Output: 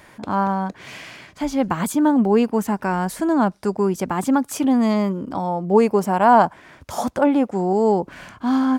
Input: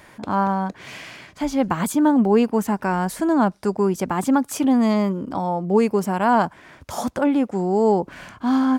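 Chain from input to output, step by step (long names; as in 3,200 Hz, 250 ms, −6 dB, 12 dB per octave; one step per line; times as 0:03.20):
0:05.60–0:07.73: dynamic equaliser 730 Hz, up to +6 dB, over −29 dBFS, Q 0.97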